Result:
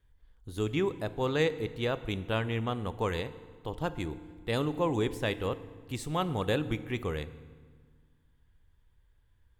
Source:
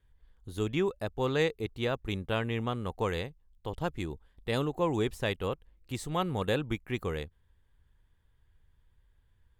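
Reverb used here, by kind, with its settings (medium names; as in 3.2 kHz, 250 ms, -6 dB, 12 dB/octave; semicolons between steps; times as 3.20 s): FDN reverb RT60 1.6 s, low-frequency decay 1.4×, high-frequency decay 0.8×, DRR 13 dB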